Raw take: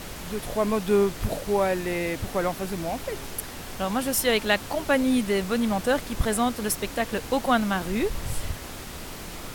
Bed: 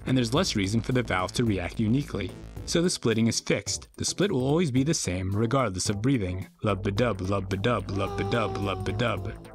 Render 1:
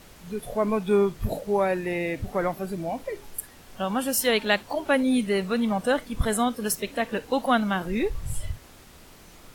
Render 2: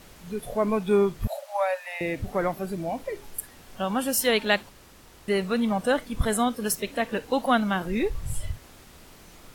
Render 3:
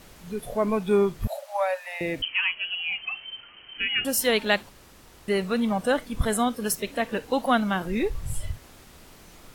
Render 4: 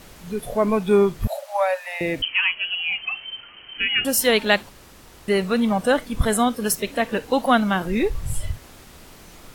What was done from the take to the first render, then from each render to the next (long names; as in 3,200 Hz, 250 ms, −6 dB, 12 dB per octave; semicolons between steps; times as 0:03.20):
noise reduction from a noise print 12 dB
0:01.27–0:02.01: Chebyshev high-pass filter 550 Hz, order 10; 0:04.69–0:05.28: fill with room tone
0:02.22–0:04.05: voice inversion scrambler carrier 3,100 Hz
level +4.5 dB